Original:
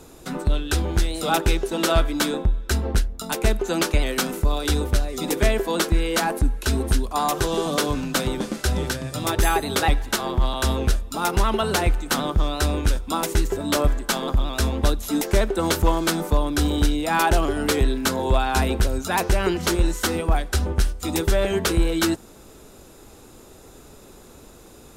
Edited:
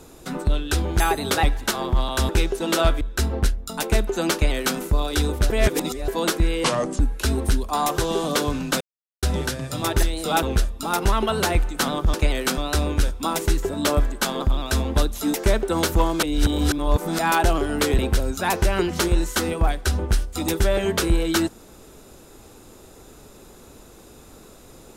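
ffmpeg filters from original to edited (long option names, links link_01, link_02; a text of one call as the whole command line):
ffmpeg -i in.wav -filter_complex "[0:a]asplit=17[link_01][link_02][link_03][link_04][link_05][link_06][link_07][link_08][link_09][link_10][link_11][link_12][link_13][link_14][link_15][link_16][link_17];[link_01]atrim=end=1.002[link_18];[link_02]atrim=start=9.448:end=10.742[link_19];[link_03]atrim=start=1.398:end=2.122[link_20];[link_04]atrim=start=2.528:end=5.022[link_21];[link_05]atrim=start=5.018:end=5.602,asetpts=PTS-STARTPTS,areverse[link_22];[link_06]atrim=start=5.598:end=6.164[link_23];[link_07]atrim=start=6.16:end=6.42,asetpts=PTS-STARTPTS,asetrate=32193,aresample=44100[link_24];[link_08]atrim=start=6.416:end=8.23,asetpts=PTS-STARTPTS,afade=type=out:start_time=1.81:duration=0.004:curve=hsin[link_25];[link_09]atrim=start=8.23:end=8.65,asetpts=PTS-STARTPTS,volume=0[link_26];[link_10]atrim=start=8.65:end=9.452,asetpts=PTS-STARTPTS,afade=type=in:duration=0.004:curve=hsin[link_27];[link_11]atrim=start=0.998:end=1.402[link_28];[link_12]atrim=start=10.738:end=12.452[link_29];[link_13]atrim=start=3.848:end=4.292[link_30];[link_14]atrim=start=12.448:end=16.102[link_31];[link_15]atrim=start=16.098:end=17.062,asetpts=PTS-STARTPTS,areverse[link_32];[link_16]atrim=start=17.058:end=17.862[link_33];[link_17]atrim=start=18.658[link_34];[link_18][link_19]acrossfade=duration=0.004:curve1=hsin:curve2=hsin[link_35];[link_35][link_20]acrossfade=duration=0.004:curve1=hsin:curve2=hsin[link_36];[link_36][link_21]acrossfade=duration=0.004:curve1=hsin:curve2=hsin[link_37];[link_37][link_22]acrossfade=duration=0.004:curve1=hsin:curve2=hsin[link_38];[link_38][link_23]acrossfade=duration=0.004:curve1=hsin:curve2=hsin[link_39];[link_39][link_24]acrossfade=duration=0.004:curve1=hsin:curve2=hsin[link_40];[link_25][link_26][link_27]concat=n=3:v=0:a=1[link_41];[link_40][link_41]acrossfade=duration=0.004:curve1=hsin:curve2=hsin[link_42];[link_42][link_28]acrossfade=duration=0.004:curve1=hsin:curve2=hsin[link_43];[link_43][link_29]acrossfade=duration=0.004:curve1=hsin:curve2=hsin[link_44];[link_44][link_30]acrossfade=duration=0.004:curve1=hsin:curve2=hsin[link_45];[link_45][link_31]acrossfade=duration=0.004:curve1=hsin:curve2=hsin[link_46];[link_46][link_32]acrossfade=duration=0.004:curve1=hsin:curve2=hsin[link_47];[link_47][link_33]acrossfade=duration=0.004:curve1=hsin:curve2=hsin[link_48];[link_48][link_34]acrossfade=duration=0.004:curve1=hsin:curve2=hsin" out.wav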